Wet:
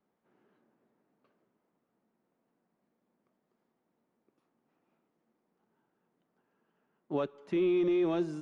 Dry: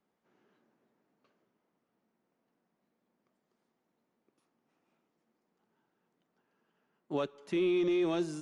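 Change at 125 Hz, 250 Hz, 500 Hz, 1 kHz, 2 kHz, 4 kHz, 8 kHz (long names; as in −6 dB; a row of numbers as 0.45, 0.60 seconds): +1.5 dB, +1.5 dB, +1.5 dB, +0.5 dB, −2.5 dB, −5.0 dB, can't be measured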